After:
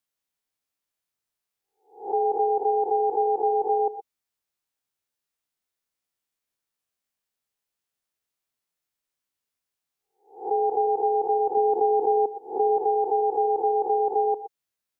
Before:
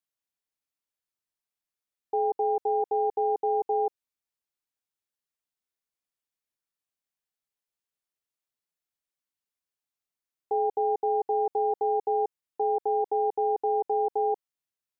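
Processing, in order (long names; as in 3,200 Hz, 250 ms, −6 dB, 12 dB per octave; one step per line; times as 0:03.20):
peak hold with a rise ahead of every peak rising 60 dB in 0.41 s
0:11.57–0:12.77: parametric band 230 Hz +9.5 dB 1.1 octaves
reverb whose tail is shaped and stops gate 140 ms rising, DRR 10 dB
level +3 dB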